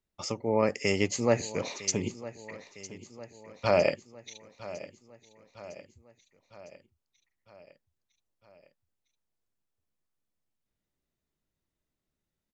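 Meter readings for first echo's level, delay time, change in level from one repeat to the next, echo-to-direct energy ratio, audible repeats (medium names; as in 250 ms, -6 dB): -16.5 dB, 956 ms, -4.5 dB, -14.5 dB, 4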